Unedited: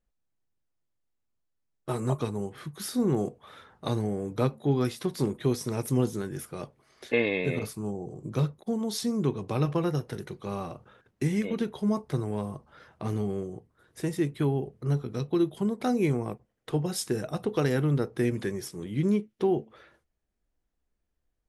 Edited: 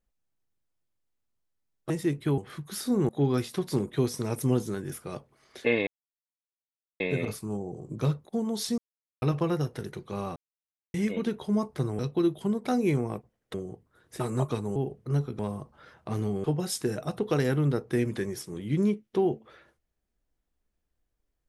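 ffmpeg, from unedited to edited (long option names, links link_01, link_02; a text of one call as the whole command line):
ffmpeg -i in.wav -filter_complex "[0:a]asplit=15[link_01][link_02][link_03][link_04][link_05][link_06][link_07][link_08][link_09][link_10][link_11][link_12][link_13][link_14][link_15];[link_01]atrim=end=1.902[link_16];[link_02]atrim=start=14.038:end=14.522[link_17];[link_03]atrim=start=2.458:end=3.172[link_18];[link_04]atrim=start=4.558:end=7.34,asetpts=PTS-STARTPTS,afade=type=out:start_time=2.778:duration=0.004:curve=hsin,apad=pad_dur=1.13[link_19];[link_05]atrim=start=7.34:end=9.12,asetpts=PTS-STARTPTS,afade=type=in:duration=0.004:curve=hsin,afade=type=out:start_time=1.776:duration=0.004:curve=hsin[link_20];[link_06]atrim=start=9.12:end=9.56,asetpts=PTS-STARTPTS,volume=0[link_21];[link_07]atrim=start=9.56:end=10.7,asetpts=PTS-STARTPTS,afade=type=in:duration=0.004:curve=hsin,afade=type=out:start_time=1.136:duration=0.004:curve=hsin[link_22];[link_08]atrim=start=10.7:end=11.28,asetpts=PTS-STARTPTS,volume=0[link_23];[link_09]atrim=start=11.28:end=12.332,asetpts=PTS-STARTPTS,afade=type=in:duration=0.004:curve=hsin[link_24];[link_10]atrim=start=15.148:end=16.702[link_25];[link_11]atrim=start=13.378:end=14.042[link_26];[link_12]atrim=start=1.898:end=2.462[link_27];[link_13]atrim=start=14.518:end=15.152[link_28];[link_14]atrim=start=12.328:end=13.382[link_29];[link_15]atrim=start=16.698[link_30];[link_16][link_17]acrossfade=duration=0.004:curve1=hsin:curve2=hsin[link_31];[link_31][link_18]acrossfade=duration=0.004:curve1=hsin:curve2=hsin[link_32];[link_19][link_20][link_21][link_22][link_23][link_24]concat=n=6:v=0:a=1[link_33];[link_32][link_33]acrossfade=duration=0.004:curve1=hsin:curve2=hsin[link_34];[link_34][link_25]acrossfade=duration=0.004:curve1=hsin:curve2=hsin[link_35];[link_35][link_26]acrossfade=duration=0.004:curve1=hsin:curve2=hsin[link_36];[link_36][link_27]acrossfade=duration=0.004:curve1=hsin:curve2=hsin[link_37];[link_37][link_28]acrossfade=duration=0.004:curve1=hsin:curve2=hsin[link_38];[link_38][link_29]acrossfade=duration=0.004:curve1=hsin:curve2=hsin[link_39];[link_39][link_30]acrossfade=duration=0.004:curve1=hsin:curve2=hsin" out.wav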